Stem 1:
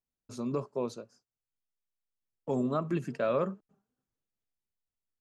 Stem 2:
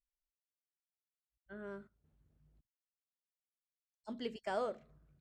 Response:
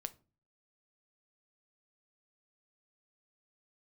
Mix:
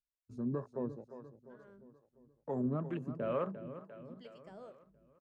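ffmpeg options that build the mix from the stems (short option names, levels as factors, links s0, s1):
-filter_complex "[0:a]afwtdn=0.00794,lowshelf=f=130:g=6,volume=0.631,asplit=2[s0][s1];[s1]volume=0.251[s2];[1:a]volume=0.282[s3];[s2]aecho=0:1:349|698|1047|1396|1745|2094|2443|2792:1|0.53|0.281|0.149|0.0789|0.0418|0.0222|0.0117[s4];[s0][s3][s4]amix=inputs=3:normalize=0,lowshelf=f=340:g=3,acrossover=split=440[s5][s6];[s5]aeval=exprs='val(0)*(1-0.7/2+0.7/2*cos(2*PI*2.2*n/s))':c=same[s7];[s6]aeval=exprs='val(0)*(1-0.7/2-0.7/2*cos(2*PI*2.2*n/s))':c=same[s8];[s7][s8]amix=inputs=2:normalize=0"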